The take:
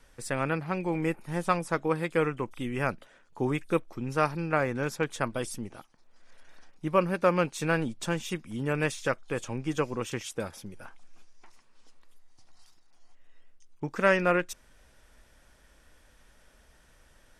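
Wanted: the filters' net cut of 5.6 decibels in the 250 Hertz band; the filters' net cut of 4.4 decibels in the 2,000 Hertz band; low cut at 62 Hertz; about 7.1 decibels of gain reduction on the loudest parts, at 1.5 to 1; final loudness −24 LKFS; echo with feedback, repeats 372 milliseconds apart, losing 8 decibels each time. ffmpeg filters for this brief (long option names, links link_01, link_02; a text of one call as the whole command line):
ffmpeg -i in.wav -af "highpass=62,equalizer=frequency=250:width_type=o:gain=-9,equalizer=frequency=2000:width_type=o:gain=-6,acompressor=threshold=-40dB:ratio=1.5,aecho=1:1:372|744|1116|1488|1860:0.398|0.159|0.0637|0.0255|0.0102,volume=13.5dB" out.wav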